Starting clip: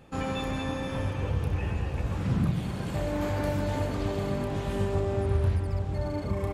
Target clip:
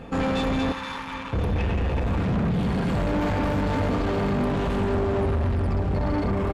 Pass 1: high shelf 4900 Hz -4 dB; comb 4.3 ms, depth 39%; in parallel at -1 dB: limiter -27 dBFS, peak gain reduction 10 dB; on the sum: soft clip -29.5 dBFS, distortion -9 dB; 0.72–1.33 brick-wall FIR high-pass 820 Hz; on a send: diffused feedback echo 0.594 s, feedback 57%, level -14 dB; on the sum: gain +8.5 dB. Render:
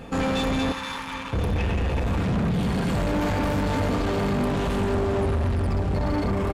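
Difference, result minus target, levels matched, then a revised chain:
8000 Hz band +6.5 dB
high shelf 4900 Hz -14.5 dB; comb 4.3 ms, depth 39%; in parallel at -1 dB: limiter -27 dBFS, peak gain reduction 10 dB; on the sum: soft clip -29.5 dBFS, distortion -9 dB; 0.72–1.33 brick-wall FIR high-pass 820 Hz; on a send: diffused feedback echo 0.594 s, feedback 57%, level -14 dB; on the sum: gain +8.5 dB

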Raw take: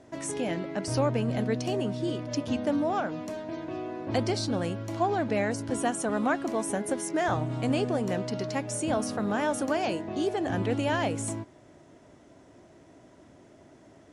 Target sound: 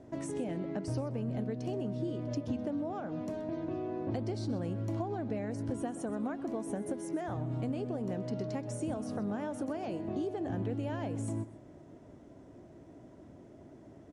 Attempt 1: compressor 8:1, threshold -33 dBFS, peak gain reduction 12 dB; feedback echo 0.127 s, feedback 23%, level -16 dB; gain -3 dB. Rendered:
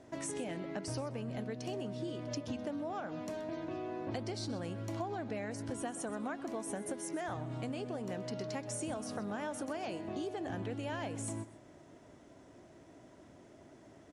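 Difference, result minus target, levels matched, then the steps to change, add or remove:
1000 Hz band +3.5 dB
add after compressor: tilt shelf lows +6.5 dB, about 790 Hz

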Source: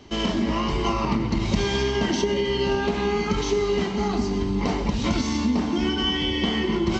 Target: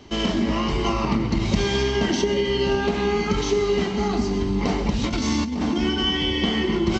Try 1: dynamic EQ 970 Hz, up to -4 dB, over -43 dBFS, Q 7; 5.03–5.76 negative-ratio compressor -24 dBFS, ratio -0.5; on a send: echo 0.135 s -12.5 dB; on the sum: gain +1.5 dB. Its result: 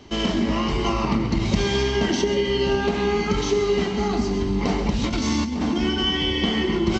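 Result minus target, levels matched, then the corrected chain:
echo-to-direct +6 dB
dynamic EQ 970 Hz, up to -4 dB, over -43 dBFS, Q 7; 5.03–5.76 negative-ratio compressor -24 dBFS, ratio -0.5; on a send: echo 0.135 s -18.5 dB; on the sum: gain +1.5 dB

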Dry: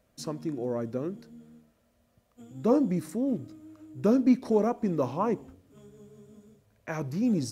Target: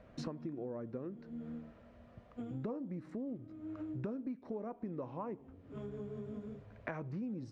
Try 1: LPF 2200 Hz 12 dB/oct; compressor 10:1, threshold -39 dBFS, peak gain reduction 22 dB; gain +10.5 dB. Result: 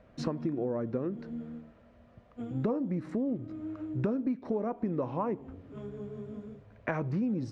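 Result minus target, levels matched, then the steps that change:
compressor: peak gain reduction -10 dB
change: compressor 10:1, threshold -50 dBFS, peak gain reduction 32 dB

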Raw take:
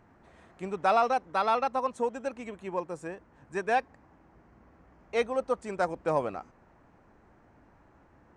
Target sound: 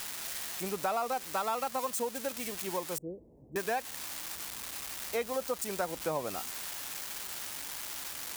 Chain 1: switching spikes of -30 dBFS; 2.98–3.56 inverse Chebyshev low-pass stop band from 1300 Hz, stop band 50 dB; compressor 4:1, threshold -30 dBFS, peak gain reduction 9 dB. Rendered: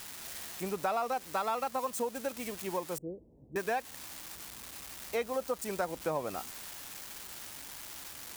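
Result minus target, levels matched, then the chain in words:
switching spikes: distortion -6 dB
switching spikes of -24 dBFS; 2.98–3.56 inverse Chebyshev low-pass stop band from 1300 Hz, stop band 50 dB; compressor 4:1, threshold -30 dBFS, peak gain reduction 9 dB

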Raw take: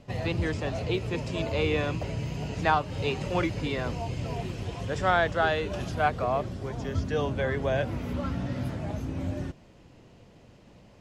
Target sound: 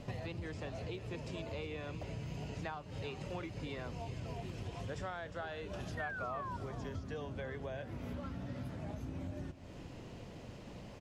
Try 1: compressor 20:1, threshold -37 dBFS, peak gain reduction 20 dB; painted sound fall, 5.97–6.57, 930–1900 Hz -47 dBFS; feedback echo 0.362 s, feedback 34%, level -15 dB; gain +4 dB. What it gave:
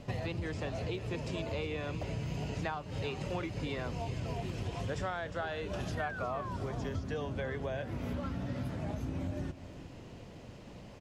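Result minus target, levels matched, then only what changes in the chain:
compressor: peak gain reduction -5.5 dB
change: compressor 20:1, threshold -43 dBFS, peak gain reduction 25.5 dB

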